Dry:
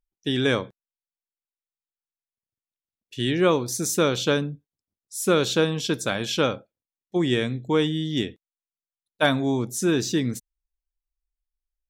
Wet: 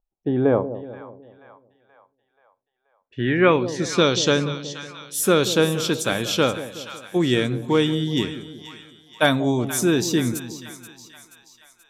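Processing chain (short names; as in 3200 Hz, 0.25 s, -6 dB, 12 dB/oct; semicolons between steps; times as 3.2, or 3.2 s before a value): low-pass sweep 780 Hz -> 13000 Hz, 2.74–4.79; split-band echo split 810 Hz, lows 0.185 s, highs 0.48 s, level -12.5 dB; gain +2.5 dB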